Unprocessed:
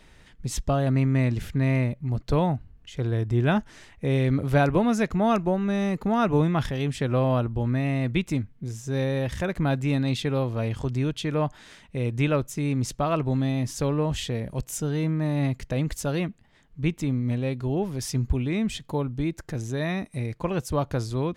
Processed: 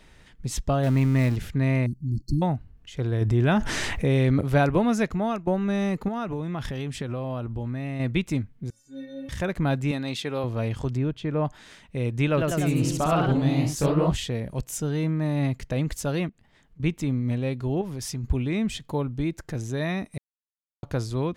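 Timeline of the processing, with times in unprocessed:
0.83–1.36 s: jump at every zero crossing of -31.5 dBFS
1.86–2.42 s: brick-wall FIR band-stop 370–4200 Hz
3.21–4.41 s: level flattener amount 70%
5.04–5.47 s: fade out, to -12 dB
6.08–8.00 s: compression, threshold -26 dBFS
8.70–9.29 s: inharmonic resonator 270 Hz, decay 0.63 s, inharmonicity 0.008
9.91–10.44 s: high-pass 370 Hz 6 dB/octave
10.97–11.45 s: low-pass 1.3 kHz 6 dB/octave
12.27–14.17 s: ever faster or slower copies 102 ms, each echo +1 st, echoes 3
16.29–16.80 s: compression 5:1, threshold -50 dBFS
17.81–18.24 s: compression 3:1, threshold -29 dBFS
20.18–20.83 s: mute

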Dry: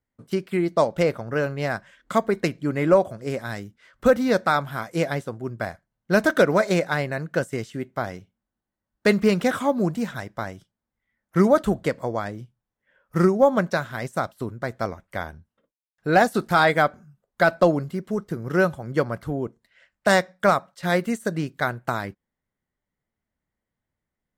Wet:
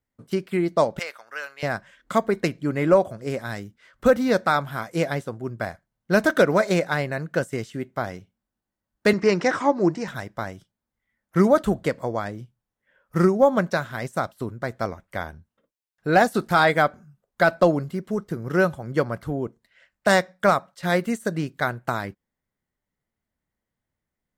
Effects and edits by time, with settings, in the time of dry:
0.99–1.63 s: high-pass 1.4 kHz
9.13–10.08 s: cabinet simulation 110–7000 Hz, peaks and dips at 230 Hz -9 dB, 330 Hz +10 dB, 930 Hz +6 dB, 1.9 kHz +6 dB, 3.4 kHz -7 dB, 5.4 kHz +7 dB

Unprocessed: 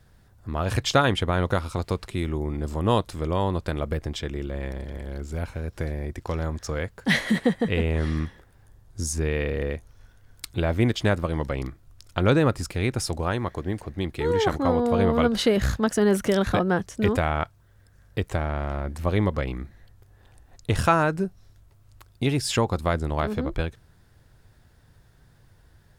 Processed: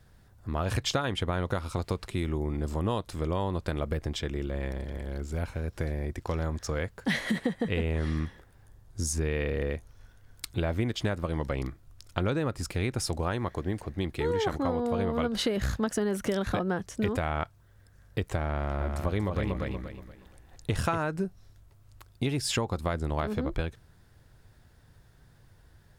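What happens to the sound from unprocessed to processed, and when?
18.57–20.98 s: feedback delay 237 ms, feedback 32%, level -5 dB
whole clip: compression, threshold -23 dBFS; trim -1.5 dB

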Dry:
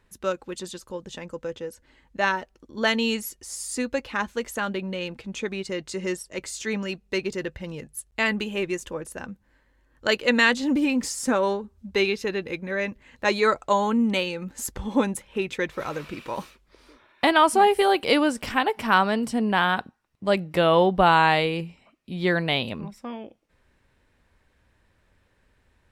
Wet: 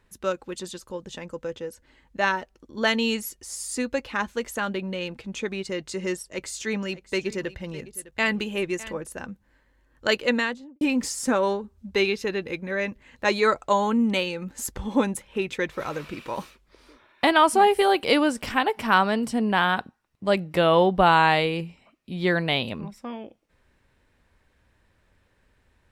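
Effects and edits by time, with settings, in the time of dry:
6.29–8.98 s: delay 607 ms -17.5 dB
10.15–10.81 s: studio fade out

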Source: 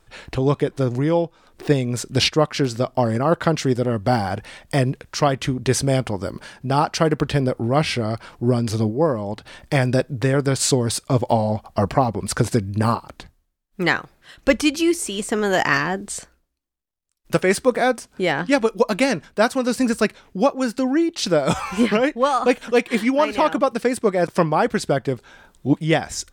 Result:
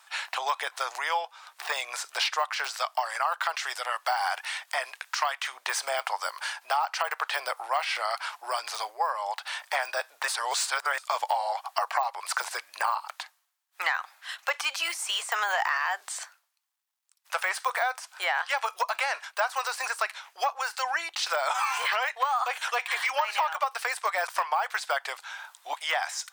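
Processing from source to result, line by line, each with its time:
2.71–5.53 s: bass shelf 480 Hz -10 dB
10.28–10.98 s: reverse
whole clip: de-esser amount 95%; steep high-pass 800 Hz 36 dB/octave; compression 6:1, threshold -31 dBFS; trim +7.5 dB

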